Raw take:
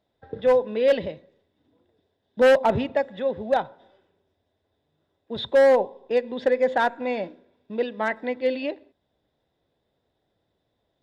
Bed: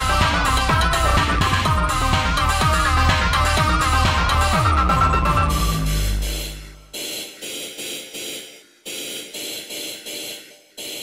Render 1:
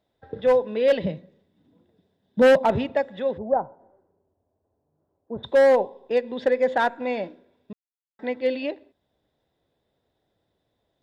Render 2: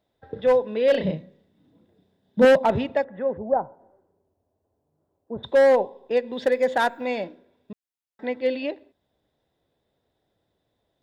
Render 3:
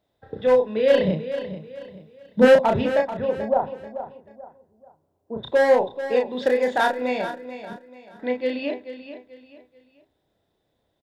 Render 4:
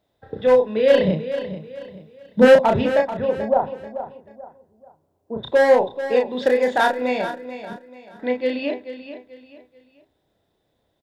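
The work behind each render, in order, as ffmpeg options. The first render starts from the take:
ffmpeg -i in.wav -filter_complex "[0:a]asettb=1/sr,asplit=3[link_01][link_02][link_03];[link_01]atrim=end=1.044[link_04];[link_02]atrim=start=1.04:end=2.65,asetpts=PTS-STARTPTS,afade=type=in:duration=0.004:curve=qsin,afade=type=out:start_time=1.606:duration=0.004:curve=qsin,equalizer=frequency=180:width_type=o:width=0.77:gain=14[link_05];[link_03]atrim=start=2.646[link_06];[link_04][link_05]acrossfade=duration=0.004:curve1=hsin:curve2=qsin[link_07];[link_07][link_06]acrossfade=duration=0.004:curve1=qsin:curve2=hsin,asplit=3[link_08][link_09][link_10];[link_08]afade=type=out:start_time=3.37:duration=0.02[link_11];[link_09]lowpass=frequency=1100:width=0.5412,lowpass=frequency=1100:width=1.3066,afade=type=in:start_time=3.37:duration=0.02,afade=type=out:start_time=5.43:duration=0.02[link_12];[link_10]afade=type=in:start_time=5.43:duration=0.02[link_13];[link_11][link_12][link_13]amix=inputs=3:normalize=0,asplit=3[link_14][link_15][link_16];[link_14]atrim=end=7.73,asetpts=PTS-STARTPTS,afade=type=out:start_time=7.726:duration=0.004:curve=hsin[link_17];[link_15]atrim=start=7.73:end=8.19,asetpts=PTS-STARTPTS,volume=0[link_18];[link_16]atrim=start=8.19,asetpts=PTS-STARTPTS,afade=type=in:duration=0.004:curve=hsin[link_19];[link_17][link_18][link_19]concat=n=3:v=0:a=1" out.wav
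ffmpeg -i in.wav -filter_complex "[0:a]asettb=1/sr,asplit=3[link_01][link_02][link_03];[link_01]atrim=end=0.914[link_04];[link_02]atrim=start=0.91:end=2.45,asetpts=PTS-STARTPTS,afade=type=in:duration=0.004:curve=qsin,afade=type=out:start_time=1.536:duration=0.004:curve=qsin,asplit=2[link_05][link_06];[link_06]adelay=32,volume=-3.5dB[link_07];[link_05][link_07]amix=inputs=2:normalize=0,atrim=end_sample=67914[link_08];[link_03]atrim=start=2.446[link_09];[link_04][link_08]acrossfade=duration=0.004:curve1=hsin:curve2=qsin[link_10];[link_10][link_09]acrossfade=duration=0.004:curve1=qsin:curve2=hsin,asettb=1/sr,asplit=3[link_11][link_12][link_13];[link_11]atrim=end=3.044[link_14];[link_12]atrim=start=3.04:end=3.5,asetpts=PTS-STARTPTS,afade=type=in:duration=0.004:curve=qsin,afade=type=out:start_time=0.456:duration=0.004:curve=qsin,lowpass=frequency=1900:width=0.5412,lowpass=frequency=1900:width=1.3066[link_15];[link_13]atrim=start=3.496[link_16];[link_14][link_15]acrossfade=duration=0.004:curve1=hsin:curve2=qsin[link_17];[link_17][link_16]acrossfade=duration=0.004:curve1=qsin:curve2=hsin,asettb=1/sr,asplit=3[link_18][link_19][link_20];[link_18]atrim=end=6.324[link_21];[link_19]atrim=start=6.32:end=7.24,asetpts=PTS-STARTPTS,afade=type=in:duration=0.004:curve=qsin,afade=type=out:start_time=0.916:duration=0.004:curve=qsin,aemphasis=mode=production:type=50fm[link_22];[link_20]atrim=start=7.236[link_23];[link_21][link_22]acrossfade=duration=0.004:curve1=hsin:curve2=qsin[link_24];[link_24][link_23]acrossfade=duration=0.004:curve1=qsin:curve2=hsin" out.wav
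ffmpeg -i in.wav -filter_complex "[0:a]asplit=2[link_01][link_02];[link_02]adelay=32,volume=-4dB[link_03];[link_01][link_03]amix=inputs=2:normalize=0,aecho=1:1:436|872|1308:0.266|0.0878|0.029" out.wav
ffmpeg -i in.wav -af "volume=2.5dB,alimiter=limit=-1dB:level=0:latency=1" out.wav

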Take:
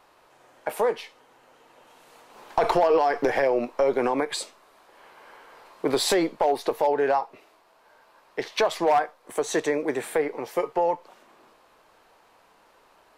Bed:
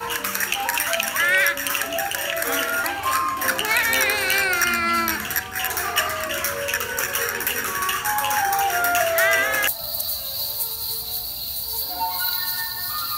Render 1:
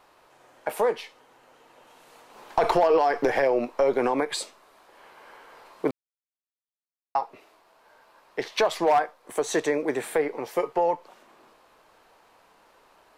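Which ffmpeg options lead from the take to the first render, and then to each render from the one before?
ffmpeg -i in.wav -filter_complex "[0:a]asplit=3[link_01][link_02][link_03];[link_01]atrim=end=5.91,asetpts=PTS-STARTPTS,afade=type=out:start_time=5.906:duration=0.004:curve=hsin[link_04];[link_02]atrim=start=5.91:end=7.15,asetpts=PTS-STARTPTS,volume=0[link_05];[link_03]atrim=start=7.15,asetpts=PTS-STARTPTS,afade=type=in:duration=0.004:curve=hsin[link_06];[link_04][link_05][link_06]concat=n=3:v=0:a=1" out.wav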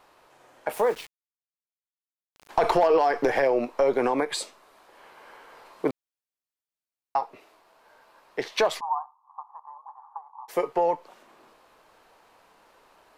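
ffmpeg -i in.wav -filter_complex "[0:a]asettb=1/sr,asplit=3[link_01][link_02][link_03];[link_01]atrim=end=0.734[link_04];[link_02]atrim=start=0.73:end=2.49,asetpts=PTS-STARTPTS,afade=type=in:duration=0.004:curve=qsin,afade=type=out:start_time=1.756:duration=0.004:curve=qsin,aeval=exprs='val(0)*gte(abs(val(0)),0.0112)':channel_layout=same[link_05];[link_03]atrim=start=2.486[link_06];[link_04][link_05]acrossfade=duration=0.004:curve1=hsin:curve2=qsin[link_07];[link_07][link_06]acrossfade=duration=0.004:curve1=qsin:curve2=hsin,asplit=3[link_08][link_09][link_10];[link_08]afade=type=out:start_time=8.79:duration=0.02[link_11];[link_09]asuperpass=centerf=970:order=8:qfactor=2.7,afade=type=in:start_time=8.79:duration=0.02,afade=type=out:start_time=10.48:duration=0.02[link_12];[link_10]afade=type=in:start_time=10.48:duration=0.02[link_13];[link_11][link_12][link_13]amix=inputs=3:normalize=0" out.wav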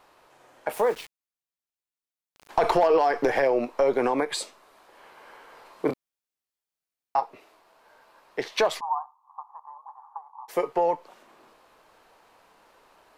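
ffmpeg -i in.wav -filter_complex "[0:a]asettb=1/sr,asplit=3[link_01][link_02][link_03];[link_01]atrim=end=5.864[link_04];[link_02]atrim=start=5.86:end=7.2,asetpts=PTS-STARTPTS,afade=type=in:duration=0.004:curve=qsin,afade=type=out:start_time=1.336:duration=0.004:curve=qsin,asplit=2[link_05][link_06];[link_06]adelay=28,volume=-4dB[link_07];[link_05][link_07]amix=inputs=2:normalize=0,atrim=end_sample=59094[link_08];[link_03]atrim=start=7.196[link_09];[link_04][link_08]acrossfade=duration=0.004:curve1=hsin:curve2=qsin[link_10];[link_10][link_09]acrossfade=duration=0.004:curve1=qsin:curve2=hsin" out.wav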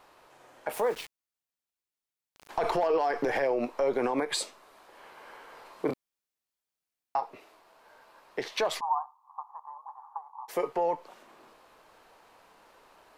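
ffmpeg -i in.wav -af "alimiter=limit=-19dB:level=0:latency=1:release=79" out.wav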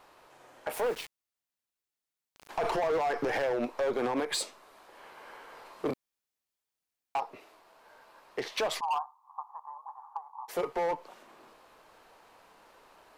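ffmpeg -i in.wav -af "volume=25.5dB,asoftclip=hard,volume=-25.5dB" out.wav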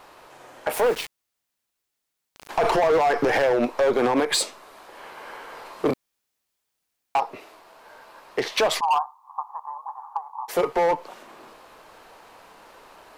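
ffmpeg -i in.wav -af "volume=9.5dB" out.wav

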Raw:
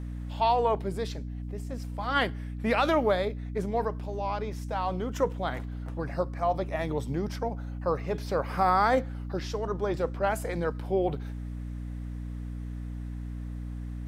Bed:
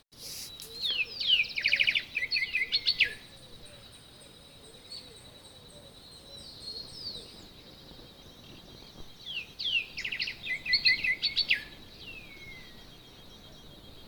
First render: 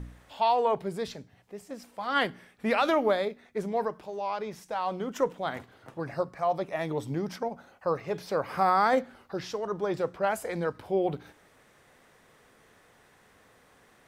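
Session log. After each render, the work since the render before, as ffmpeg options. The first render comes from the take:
ffmpeg -i in.wav -af "bandreject=frequency=60:width_type=h:width=4,bandreject=frequency=120:width_type=h:width=4,bandreject=frequency=180:width_type=h:width=4,bandreject=frequency=240:width_type=h:width=4,bandreject=frequency=300:width_type=h:width=4" out.wav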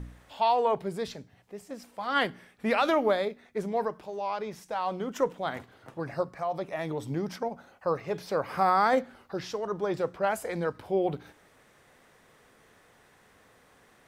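ffmpeg -i in.wav -filter_complex "[0:a]asettb=1/sr,asplit=3[link_01][link_02][link_03];[link_01]atrim=end=6.404[link_04];[link_02]atrim=start=6.4:end=7.06,asetpts=PTS-STARTPTS,afade=type=in:duration=0.004:curve=qsin,afade=type=out:start_time=0.656:duration=0.004:curve=qsin,acompressor=threshold=-29dB:ratio=2:attack=3.2:release=140:knee=1:detection=peak[link_05];[link_03]atrim=start=7.056[link_06];[link_04][link_05]acrossfade=duration=0.004:curve1=hsin:curve2=qsin[link_07];[link_07][link_06]acrossfade=duration=0.004:curve1=qsin:curve2=hsin" out.wav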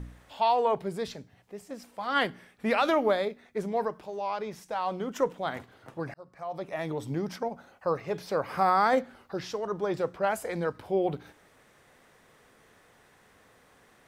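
ffmpeg -i in.wav -filter_complex "[0:a]asplit=2[link_01][link_02];[link_01]atrim=end=6.14,asetpts=PTS-STARTPTS,afade=type=out:start_time=6.136:duration=0.004:curve=hsin[link_03];[link_02]atrim=start=6.14,asetpts=PTS-STARTPTS,afade=type=in:duration=0.62[link_04];[link_03][link_04]concat=n=2:v=0:a=1" out.wav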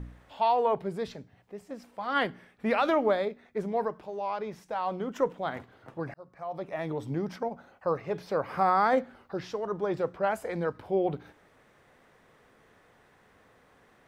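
ffmpeg -i in.wav -af "equalizer=frequency=11000:width_type=o:width=2.4:gain=-9" out.wav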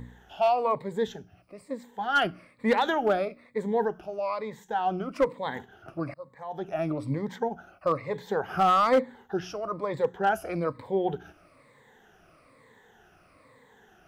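ffmpeg -i in.wav -af "afftfilt=real='re*pow(10,15/40*sin(2*PI*(1*log(max(b,1)*sr/1024/100)/log(2)-(-1.1)*(pts-256)/sr)))':imag='im*pow(10,15/40*sin(2*PI*(1*log(max(b,1)*sr/1024/100)/log(2)-(-1.1)*(pts-256)/sr)))':win_size=1024:overlap=0.75,asoftclip=type=hard:threshold=-16dB" out.wav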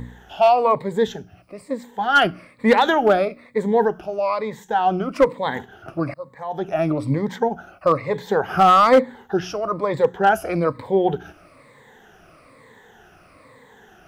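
ffmpeg -i in.wav -af "volume=8.5dB" out.wav

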